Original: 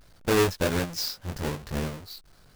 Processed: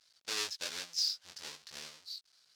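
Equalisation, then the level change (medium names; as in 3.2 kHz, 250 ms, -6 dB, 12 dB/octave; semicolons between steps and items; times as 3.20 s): band-pass filter 4.9 kHz, Q 1.6; 0.0 dB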